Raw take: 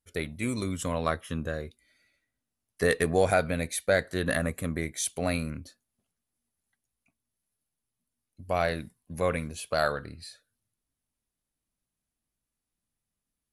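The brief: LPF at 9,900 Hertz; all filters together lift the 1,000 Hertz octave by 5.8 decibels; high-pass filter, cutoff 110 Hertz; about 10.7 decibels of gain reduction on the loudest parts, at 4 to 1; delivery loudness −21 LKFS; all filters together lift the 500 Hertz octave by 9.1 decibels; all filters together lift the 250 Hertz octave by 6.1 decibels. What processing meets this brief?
high-pass filter 110 Hz
low-pass filter 9,900 Hz
parametric band 250 Hz +5.5 dB
parametric band 500 Hz +8.5 dB
parametric band 1,000 Hz +4 dB
downward compressor 4 to 1, threshold −23 dBFS
level +8 dB

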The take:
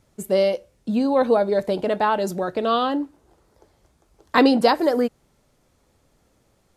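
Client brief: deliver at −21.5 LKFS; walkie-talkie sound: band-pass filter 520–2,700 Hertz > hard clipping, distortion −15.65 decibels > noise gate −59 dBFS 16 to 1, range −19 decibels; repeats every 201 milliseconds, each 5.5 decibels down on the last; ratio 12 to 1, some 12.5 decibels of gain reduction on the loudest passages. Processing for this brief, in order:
downward compressor 12 to 1, threshold −24 dBFS
band-pass filter 520–2,700 Hz
repeating echo 201 ms, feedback 53%, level −5.5 dB
hard clipping −25 dBFS
noise gate −59 dBFS 16 to 1, range −19 dB
level +11 dB

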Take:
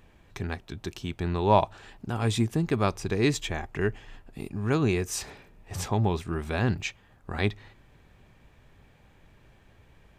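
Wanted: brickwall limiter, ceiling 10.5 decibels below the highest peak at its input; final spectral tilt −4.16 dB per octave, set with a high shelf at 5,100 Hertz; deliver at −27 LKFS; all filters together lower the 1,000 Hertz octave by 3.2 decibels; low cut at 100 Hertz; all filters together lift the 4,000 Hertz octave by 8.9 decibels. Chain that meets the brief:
high-pass filter 100 Hz
parametric band 1,000 Hz −4.5 dB
parametric band 4,000 Hz +9 dB
high-shelf EQ 5,100 Hz +4.5 dB
level +3.5 dB
brickwall limiter −12.5 dBFS

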